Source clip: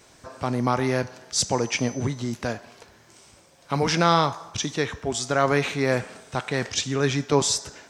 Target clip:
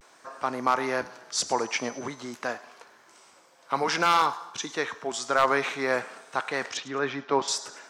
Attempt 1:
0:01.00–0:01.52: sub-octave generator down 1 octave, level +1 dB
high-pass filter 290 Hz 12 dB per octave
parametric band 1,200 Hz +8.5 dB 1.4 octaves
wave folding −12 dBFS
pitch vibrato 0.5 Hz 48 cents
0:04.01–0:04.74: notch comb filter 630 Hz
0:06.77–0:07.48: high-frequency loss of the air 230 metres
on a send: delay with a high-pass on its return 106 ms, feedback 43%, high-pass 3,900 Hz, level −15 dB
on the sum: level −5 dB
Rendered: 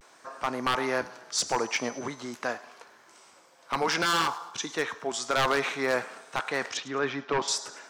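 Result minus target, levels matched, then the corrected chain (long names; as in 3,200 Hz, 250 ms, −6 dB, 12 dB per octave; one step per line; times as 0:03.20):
wave folding: distortion +12 dB
0:01.00–0:01.52: sub-octave generator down 1 octave, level +1 dB
high-pass filter 290 Hz 12 dB per octave
parametric band 1,200 Hz +8.5 dB 1.4 octaves
wave folding −5.5 dBFS
pitch vibrato 0.5 Hz 48 cents
0:04.01–0:04.74: notch comb filter 630 Hz
0:06.77–0:07.48: high-frequency loss of the air 230 metres
on a send: delay with a high-pass on its return 106 ms, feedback 43%, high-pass 3,900 Hz, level −15 dB
on the sum: level −5 dB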